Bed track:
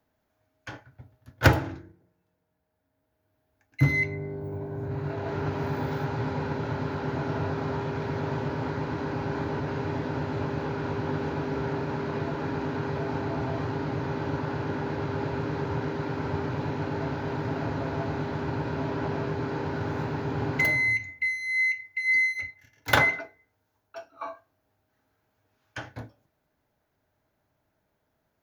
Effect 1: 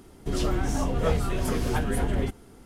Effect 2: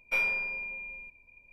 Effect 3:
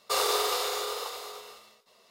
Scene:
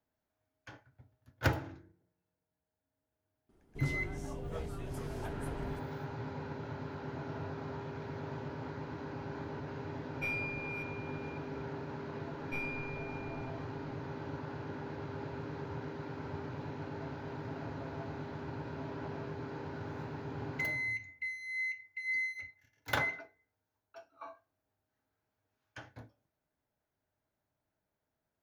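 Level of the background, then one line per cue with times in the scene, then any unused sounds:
bed track -11.5 dB
3.49 s: add 1 -17 dB + tape noise reduction on one side only decoder only
10.10 s: add 2 -9 dB + chunks repeated in reverse 426 ms, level -10 dB
12.40 s: add 2 -12.5 dB + tone controls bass +14 dB, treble -1 dB
not used: 3

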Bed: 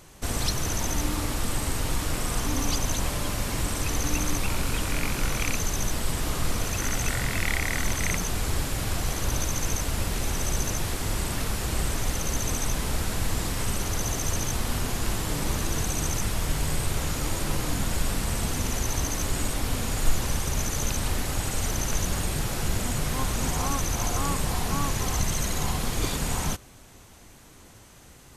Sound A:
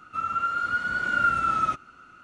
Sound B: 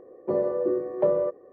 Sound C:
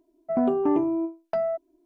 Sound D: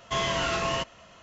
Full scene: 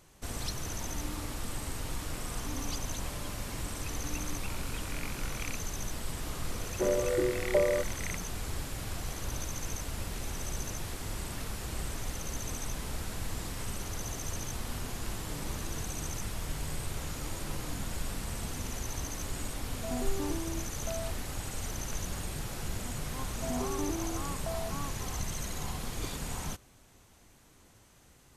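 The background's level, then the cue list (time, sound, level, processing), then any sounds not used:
bed -9.5 dB
6.52 s: add B -4 dB
19.54 s: add C -14 dB
23.13 s: add C -13 dB + bit crusher 11-bit
not used: A, D

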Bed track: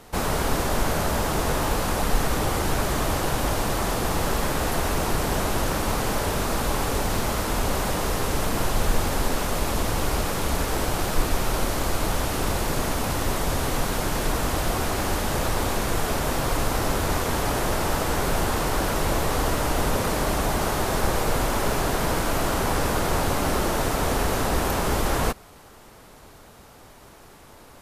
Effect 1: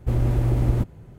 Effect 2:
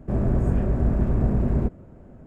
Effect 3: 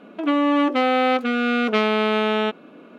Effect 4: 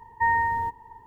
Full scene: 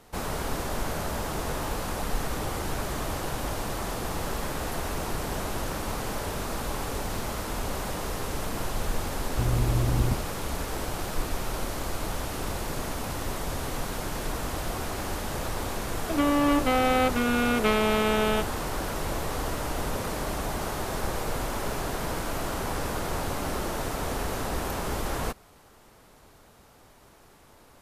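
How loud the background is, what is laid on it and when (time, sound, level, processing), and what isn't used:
bed track -7 dB
9.31 s: add 1 -4.5 dB + loudspeaker Doppler distortion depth 0.25 ms
15.91 s: add 3 -4.5 dB
not used: 2, 4

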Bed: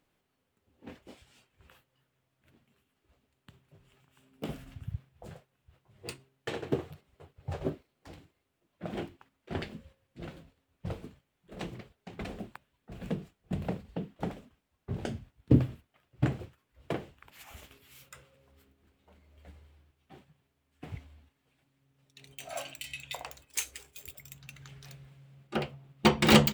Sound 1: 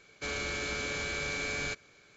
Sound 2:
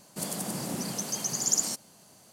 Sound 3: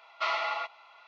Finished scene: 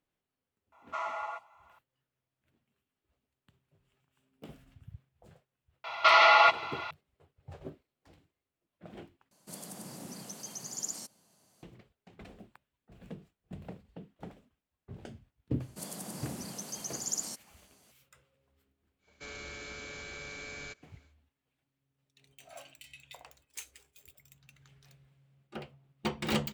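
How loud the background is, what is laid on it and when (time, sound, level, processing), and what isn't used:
bed -11 dB
0.72 s: add 3 -7.5 dB + FFT filter 440 Hz 0 dB, 1 kHz +5 dB, 4.7 kHz -15 dB, 7.4 kHz +13 dB
5.84 s: add 3 -10.5 dB + loudness maximiser +27 dB
9.31 s: replace with 2 -11.5 dB
15.60 s: add 2 -8.5 dB
18.99 s: add 1 -9.5 dB, fades 0.10 s

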